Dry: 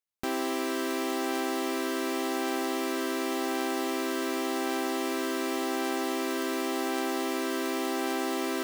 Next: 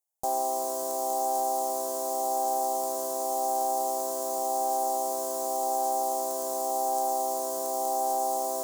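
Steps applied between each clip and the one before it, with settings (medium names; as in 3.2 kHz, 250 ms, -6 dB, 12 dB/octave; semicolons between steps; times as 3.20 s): FFT filter 110 Hz 0 dB, 170 Hz -4 dB, 320 Hz -11 dB, 480 Hz +7 dB, 820 Hz +15 dB, 1.4 kHz -16 dB, 2.4 kHz -23 dB, 6.9 kHz +12 dB; trim -4.5 dB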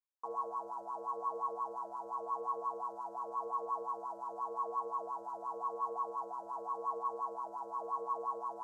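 ring modulator 320 Hz; wah-wah 5.7 Hz 520–1100 Hz, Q 9.6; trim +3 dB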